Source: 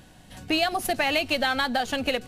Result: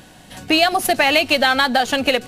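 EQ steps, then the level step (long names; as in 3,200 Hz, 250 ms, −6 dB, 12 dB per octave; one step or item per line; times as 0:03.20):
low-shelf EQ 120 Hz −10 dB
+9.0 dB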